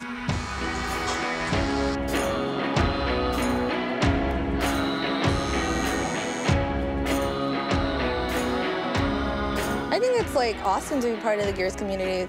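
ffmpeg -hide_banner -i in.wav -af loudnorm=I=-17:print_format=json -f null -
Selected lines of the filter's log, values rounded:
"input_i" : "-25.5",
"input_tp" : "-9.2",
"input_lra" : "0.7",
"input_thresh" : "-35.5",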